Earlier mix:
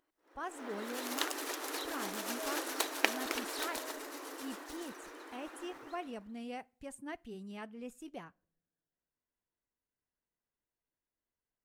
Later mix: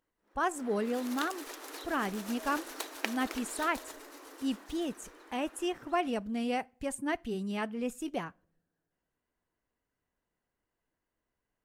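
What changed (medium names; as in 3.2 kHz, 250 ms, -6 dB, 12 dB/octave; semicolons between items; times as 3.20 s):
speech +11.0 dB; background -5.0 dB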